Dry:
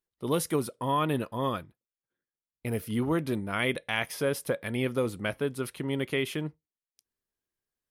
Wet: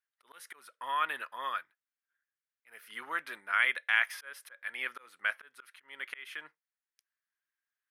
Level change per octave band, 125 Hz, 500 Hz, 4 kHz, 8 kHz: under -40 dB, -22.0 dB, -4.5 dB, -12.5 dB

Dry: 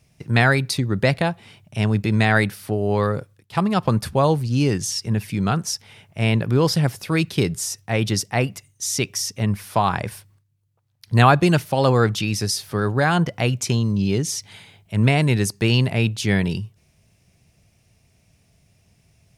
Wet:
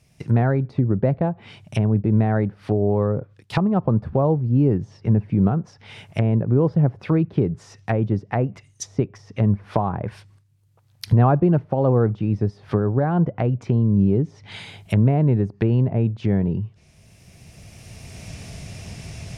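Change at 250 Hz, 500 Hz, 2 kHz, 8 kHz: +1.5 dB, -0.5 dB, -13.5 dB, -16.0 dB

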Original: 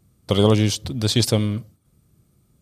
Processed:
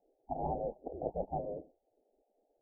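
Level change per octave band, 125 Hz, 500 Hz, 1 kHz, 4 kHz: -27.0 dB, -15.0 dB, -5.5 dB, under -40 dB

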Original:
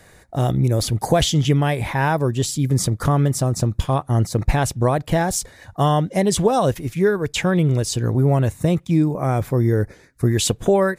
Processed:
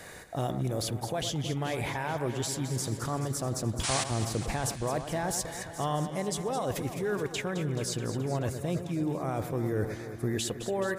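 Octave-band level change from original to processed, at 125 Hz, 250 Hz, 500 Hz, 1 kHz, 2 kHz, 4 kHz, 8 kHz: -14.5 dB, -12.5 dB, -11.5 dB, -11.0 dB, -9.5 dB, -9.5 dB, -8.0 dB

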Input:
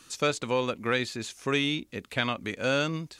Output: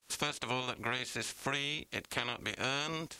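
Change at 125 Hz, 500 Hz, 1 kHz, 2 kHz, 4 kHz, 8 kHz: -9.0 dB, -12.0 dB, -5.5 dB, -5.5 dB, -4.0 dB, -1.5 dB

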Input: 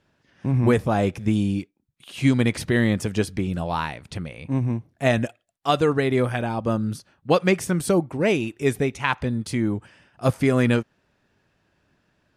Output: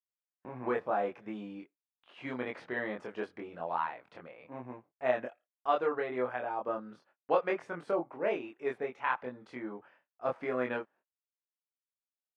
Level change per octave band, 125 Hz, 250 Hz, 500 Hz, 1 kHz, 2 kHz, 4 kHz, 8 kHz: -29.0 dB, -19.0 dB, -9.5 dB, -6.5 dB, -10.5 dB, -19.5 dB, under -30 dB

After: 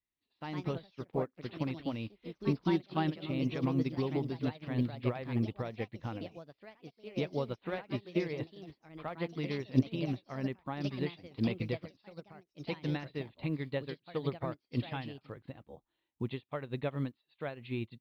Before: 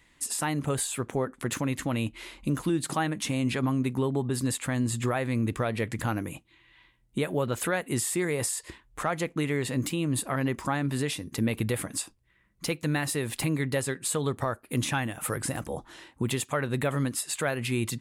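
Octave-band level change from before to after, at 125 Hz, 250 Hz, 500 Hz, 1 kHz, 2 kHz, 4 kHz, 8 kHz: -6.5 dB, -5.5 dB, -6.5 dB, -9.0 dB, -12.0 dB, -10.5 dB, under -35 dB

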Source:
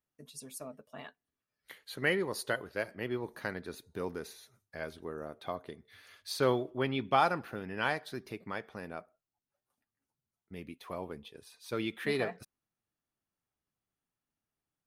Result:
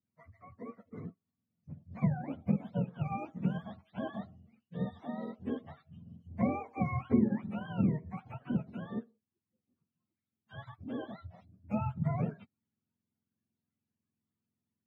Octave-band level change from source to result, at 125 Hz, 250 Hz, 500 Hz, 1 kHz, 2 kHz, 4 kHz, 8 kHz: +8.5 dB, +6.5 dB, -7.5 dB, -6.5 dB, -13.5 dB, under -15 dB, under -30 dB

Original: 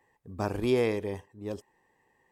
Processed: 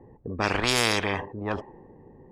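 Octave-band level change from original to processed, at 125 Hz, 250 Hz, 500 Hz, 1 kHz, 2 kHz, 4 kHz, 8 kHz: +3.0 dB, +0.5 dB, -1.0 dB, +10.5 dB, +14.0 dB, +17.0 dB, +19.5 dB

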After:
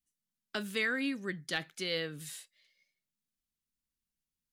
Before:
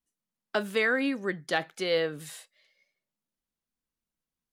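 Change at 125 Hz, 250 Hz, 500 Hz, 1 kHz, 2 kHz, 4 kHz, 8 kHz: -2.5 dB, -5.0 dB, -10.5 dB, -11.0 dB, -5.0 dB, -2.0 dB, -0.5 dB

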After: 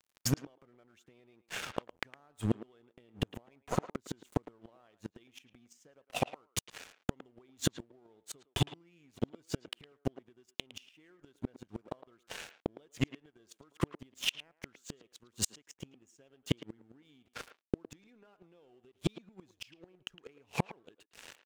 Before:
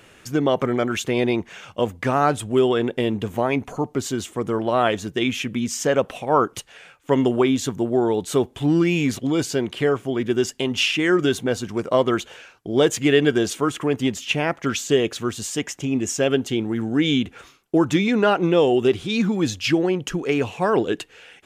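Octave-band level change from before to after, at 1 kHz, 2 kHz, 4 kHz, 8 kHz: -21.0 dB, -19.5 dB, -14.5 dB, -12.5 dB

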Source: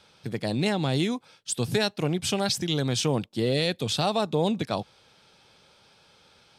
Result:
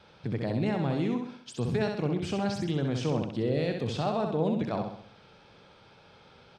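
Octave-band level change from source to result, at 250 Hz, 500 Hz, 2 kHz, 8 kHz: -1.5 dB, -2.5 dB, -6.5 dB, -16.5 dB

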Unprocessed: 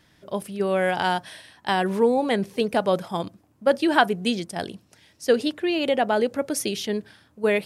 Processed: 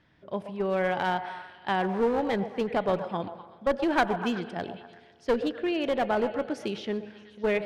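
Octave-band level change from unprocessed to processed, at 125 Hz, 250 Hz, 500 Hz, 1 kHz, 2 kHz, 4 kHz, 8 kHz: -4.0 dB, -4.5 dB, -5.0 dB, -4.0 dB, -5.5 dB, -9.0 dB, under -15 dB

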